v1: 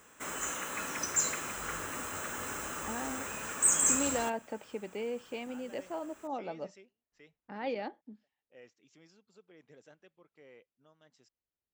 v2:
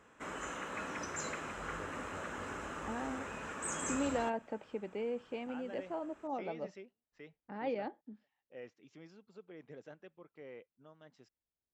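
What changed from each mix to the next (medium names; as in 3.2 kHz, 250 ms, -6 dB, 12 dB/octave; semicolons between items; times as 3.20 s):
first voice +7.5 dB; master: add tape spacing loss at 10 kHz 21 dB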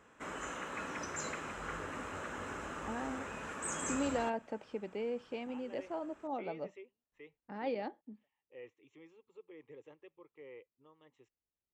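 first voice: add static phaser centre 1 kHz, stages 8; second voice: remove low-pass 3.8 kHz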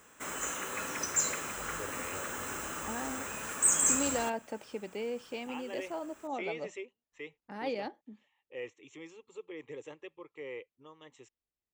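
first voice +8.0 dB; master: remove tape spacing loss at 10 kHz 21 dB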